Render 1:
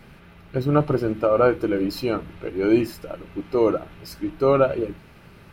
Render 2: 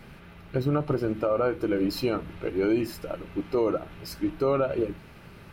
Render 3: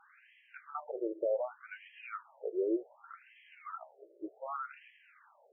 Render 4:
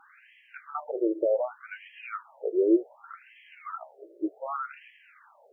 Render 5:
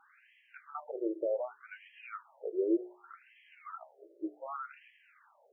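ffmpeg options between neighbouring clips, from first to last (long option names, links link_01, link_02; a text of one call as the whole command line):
ffmpeg -i in.wav -af "alimiter=limit=-16dB:level=0:latency=1:release=205" out.wav
ffmpeg -i in.wav -af "afftfilt=real='re*between(b*sr/1024,440*pow(2400/440,0.5+0.5*sin(2*PI*0.66*pts/sr))/1.41,440*pow(2400/440,0.5+0.5*sin(2*PI*0.66*pts/sr))*1.41)':imag='im*between(b*sr/1024,440*pow(2400/440,0.5+0.5*sin(2*PI*0.66*pts/sr))/1.41,440*pow(2400/440,0.5+0.5*sin(2*PI*0.66*pts/sr))*1.41)':win_size=1024:overlap=0.75,volume=-5.5dB" out.wav
ffmpeg -i in.wav -af "equalizer=frequency=290:width_type=o:width=0.52:gain=9.5,volume=6dB" out.wav
ffmpeg -i in.wav -af "bandreject=frequency=60:width_type=h:width=6,bandreject=frequency=120:width_type=h:width=6,bandreject=frequency=180:width_type=h:width=6,bandreject=frequency=240:width_type=h:width=6,bandreject=frequency=300:width_type=h:width=6,bandreject=frequency=360:width_type=h:width=6,bandreject=frequency=420:width_type=h:width=6,volume=-7.5dB" out.wav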